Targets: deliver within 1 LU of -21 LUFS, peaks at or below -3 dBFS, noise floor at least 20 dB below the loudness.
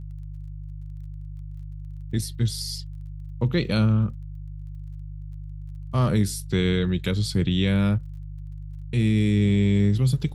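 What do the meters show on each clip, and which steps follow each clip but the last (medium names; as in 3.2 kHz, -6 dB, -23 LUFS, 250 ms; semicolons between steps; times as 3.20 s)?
tick rate 27 per s; hum 50 Hz; highest harmonic 150 Hz; hum level -33 dBFS; loudness -23.5 LUFS; peak level -10.5 dBFS; loudness target -21.0 LUFS
-> de-click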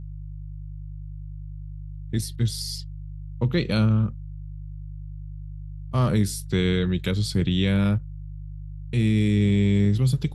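tick rate 0 per s; hum 50 Hz; highest harmonic 150 Hz; hum level -33 dBFS
-> de-hum 50 Hz, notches 3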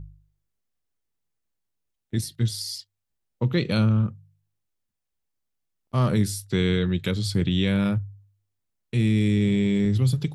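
hum not found; loudness -24.0 LUFS; peak level -11.0 dBFS; loudness target -21.0 LUFS
-> trim +3 dB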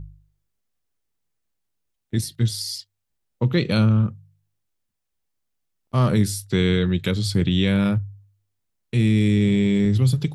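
loudness -21.0 LUFS; peak level -8.0 dBFS; noise floor -78 dBFS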